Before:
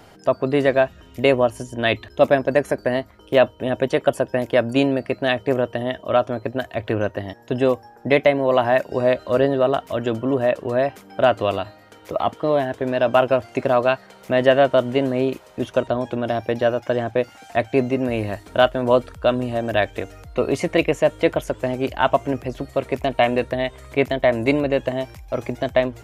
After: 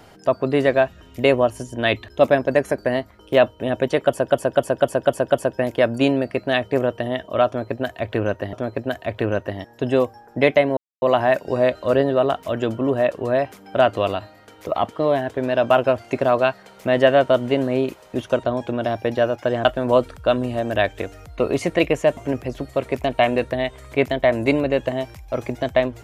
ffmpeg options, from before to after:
ffmpeg -i in.wav -filter_complex "[0:a]asplit=10[link_01][link_02][link_03][link_04][link_05][link_06][link_07][link_08][link_09][link_10];[link_01]atrim=end=4.302[link_11];[link_02]atrim=start=4.048:end=4.302[link_12];[link_03]atrim=start=4.048:end=4.302[link_13];[link_04]atrim=start=4.048:end=4.302[link_14];[link_05]atrim=start=4.048:end=4.302[link_15];[link_06]atrim=start=4.048:end=7.282[link_16];[link_07]atrim=start=6.218:end=8.46,asetpts=PTS-STARTPTS,afade=type=out:start_time=2.238:duration=0.004:curve=hsin,apad=pad_dur=0.25[link_17];[link_08]atrim=start=8.46:end=17.092,asetpts=PTS-STARTPTS,afade=type=in:duration=0.004:curve=hsin[link_18];[link_09]atrim=start=18.628:end=21.152[link_19];[link_10]atrim=start=22.168[link_20];[link_11][link_12]acrossfade=duration=0.004:curve1=hsin:curve2=hsin[link_21];[link_21][link_13]acrossfade=duration=0.004:curve1=hsin:curve2=hsin[link_22];[link_22][link_14]acrossfade=duration=0.004:curve1=hsin:curve2=hsin[link_23];[link_23][link_15]acrossfade=duration=0.004:curve1=hsin:curve2=hsin[link_24];[link_24][link_16]acrossfade=duration=0.004:curve1=hsin:curve2=hsin[link_25];[link_17][link_18]concat=n=2:v=0:a=1[link_26];[link_25][link_26]acrossfade=duration=0.004:curve1=hsin:curve2=hsin[link_27];[link_27][link_19]acrossfade=duration=0.004:curve1=hsin:curve2=hsin[link_28];[link_28][link_20]acrossfade=duration=0.004:curve1=hsin:curve2=hsin" out.wav

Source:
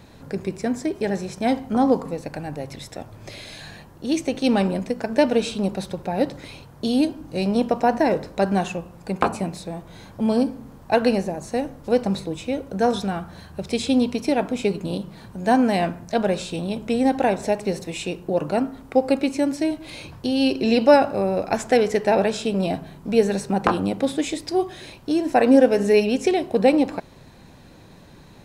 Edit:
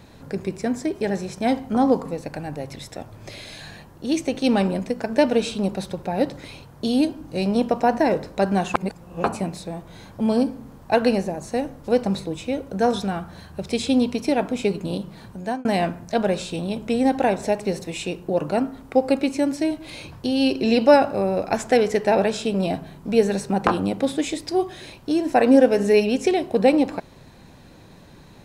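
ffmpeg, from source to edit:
ffmpeg -i in.wav -filter_complex "[0:a]asplit=4[link_01][link_02][link_03][link_04];[link_01]atrim=end=8.742[link_05];[link_02]atrim=start=8.738:end=9.242,asetpts=PTS-STARTPTS,areverse[link_06];[link_03]atrim=start=9.238:end=15.65,asetpts=PTS-STARTPTS,afade=type=out:start_time=6.062:duration=0.35[link_07];[link_04]atrim=start=15.65,asetpts=PTS-STARTPTS,afade=type=in:duration=0.004:curve=hsin[link_08];[link_05][link_06]acrossfade=duration=0.004:curve1=hsin:curve2=hsin[link_09];[link_07][link_08]concat=n=2:v=0:a=1[link_10];[link_09][link_10]acrossfade=duration=0.004:curve1=hsin:curve2=hsin" out.wav

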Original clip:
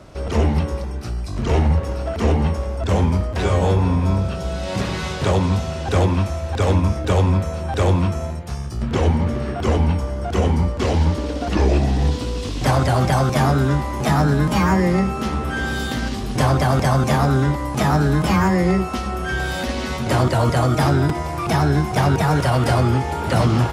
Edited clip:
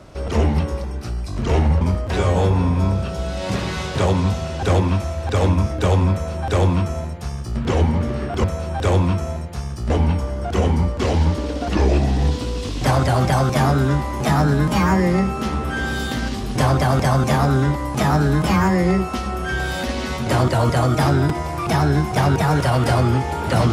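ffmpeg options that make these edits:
ffmpeg -i in.wav -filter_complex "[0:a]asplit=4[link_01][link_02][link_03][link_04];[link_01]atrim=end=1.812[link_05];[link_02]atrim=start=3.068:end=9.702[link_06];[link_03]atrim=start=7.378:end=8.842[link_07];[link_04]atrim=start=9.698[link_08];[link_05][link_06]acrossfade=duration=0.004:curve1=hsin:curve2=hsin[link_09];[link_09][link_07]acrossfade=duration=0.004:curve1=hsin:curve2=hsin[link_10];[link_10][link_08]acrossfade=duration=0.004:curve1=hsin:curve2=hsin" out.wav

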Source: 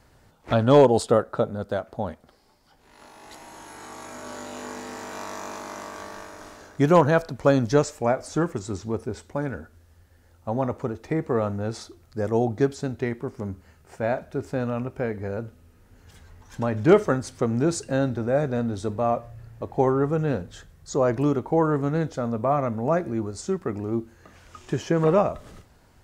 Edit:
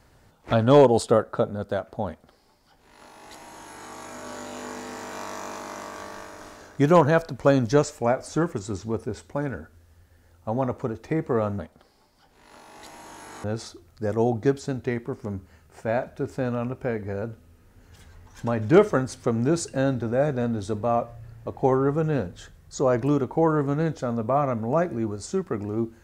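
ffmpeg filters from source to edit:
ffmpeg -i in.wav -filter_complex "[0:a]asplit=3[link_01][link_02][link_03];[link_01]atrim=end=11.592[link_04];[link_02]atrim=start=2.068:end=3.922[link_05];[link_03]atrim=start=11.588[link_06];[link_04][link_05]acrossfade=duration=0.004:curve1=hsin:curve2=hsin[link_07];[link_07][link_06]acrossfade=duration=0.004:curve1=hsin:curve2=hsin" out.wav

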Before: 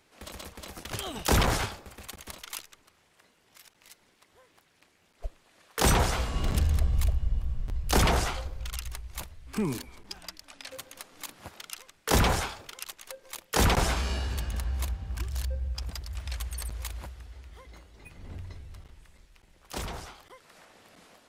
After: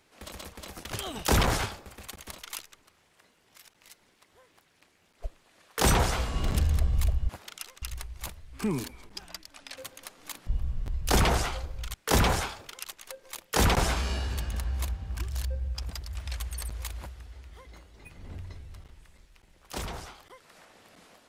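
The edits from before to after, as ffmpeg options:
ffmpeg -i in.wav -filter_complex "[0:a]asplit=5[link_01][link_02][link_03][link_04][link_05];[link_01]atrim=end=7.292[link_06];[link_02]atrim=start=11.408:end=11.942[link_07];[link_03]atrim=start=8.758:end=11.412[link_08];[link_04]atrim=start=7.288:end=8.762[link_09];[link_05]atrim=start=11.938[link_10];[link_06][link_07]acrossfade=duration=0.004:curve1=hsin:curve2=hsin[link_11];[link_11][link_08]acrossfade=duration=0.004:curve1=hsin:curve2=hsin[link_12];[link_12][link_09]acrossfade=duration=0.004:curve1=hsin:curve2=hsin[link_13];[link_13][link_10]acrossfade=duration=0.004:curve1=hsin:curve2=hsin" out.wav

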